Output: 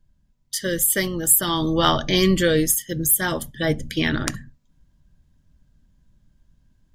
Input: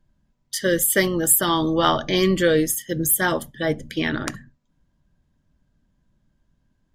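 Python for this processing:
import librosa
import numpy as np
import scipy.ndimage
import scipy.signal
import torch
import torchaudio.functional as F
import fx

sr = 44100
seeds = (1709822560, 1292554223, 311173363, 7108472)

y = fx.high_shelf(x, sr, hz=2300.0, db=8.5)
y = fx.rider(y, sr, range_db=3, speed_s=0.5)
y = fx.low_shelf(y, sr, hz=170.0, db=11.5)
y = y * librosa.db_to_amplitude(-5.0)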